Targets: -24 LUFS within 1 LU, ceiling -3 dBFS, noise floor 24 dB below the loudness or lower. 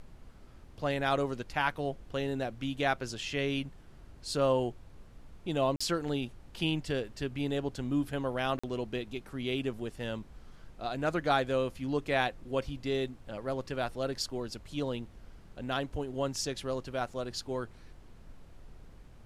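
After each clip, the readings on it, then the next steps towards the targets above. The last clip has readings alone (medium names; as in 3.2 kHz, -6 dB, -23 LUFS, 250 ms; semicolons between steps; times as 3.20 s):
dropouts 2; longest dropout 45 ms; noise floor -53 dBFS; noise floor target -58 dBFS; loudness -33.5 LUFS; peak level -13.5 dBFS; loudness target -24.0 LUFS
-> interpolate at 5.76/8.59 s, 45 ms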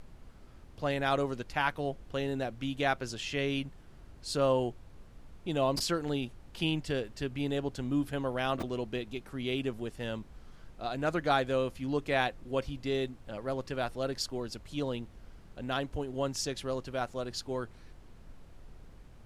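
dropouts 0; noise floor -53 dBFS; noise floor target -58 dBFS
-> noise print and reduce 6 dB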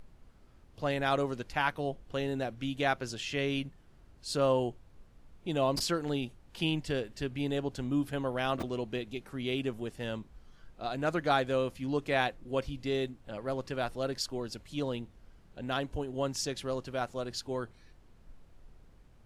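noise floor -59 dBFS; loudness -33.5 LUFS; peak level -13.5 dBFS; loudness target -24.0 LUFS
-> trim +9.5 dB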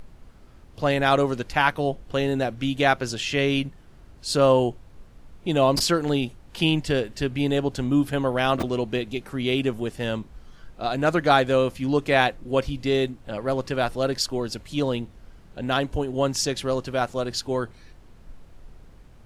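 loudness -24.0 LUFS; peak level -4.0 dBFS; noise floor -49 dBFS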